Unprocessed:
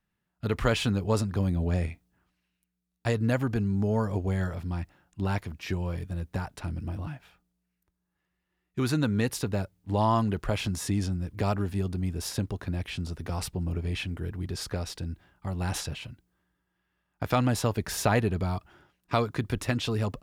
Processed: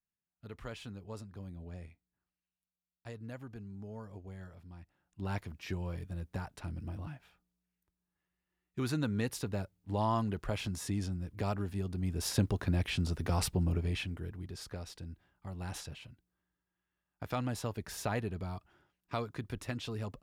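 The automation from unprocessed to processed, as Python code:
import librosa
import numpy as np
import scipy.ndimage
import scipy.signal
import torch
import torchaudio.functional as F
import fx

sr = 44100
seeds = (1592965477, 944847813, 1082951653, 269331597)

y = fx.gain(x, sr, db=fx.line((4.79, -19.0), (5.35, -7.0), (11.88, -7.0), (12.41, 1.0), (13.58, 1.0), (14.5, -10.5)))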